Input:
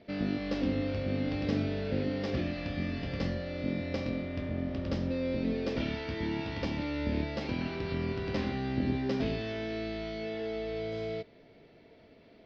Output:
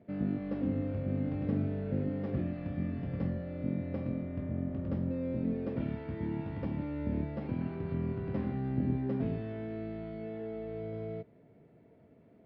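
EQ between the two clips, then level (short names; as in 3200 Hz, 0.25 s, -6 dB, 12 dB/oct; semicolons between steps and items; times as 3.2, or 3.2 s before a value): HPF 55 Hz; LPF 1500 Hz 12 dB/oct; bell 140 Hz +9 dB 1.7 oct; -6.0 dB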